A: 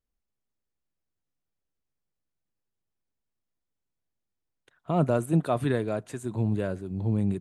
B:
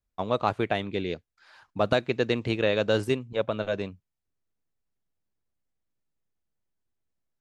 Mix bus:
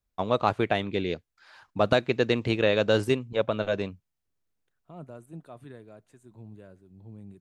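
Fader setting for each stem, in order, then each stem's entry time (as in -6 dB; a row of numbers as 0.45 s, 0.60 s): -19.5 dB, +1.5 dB; 0.00 s, 0.00 s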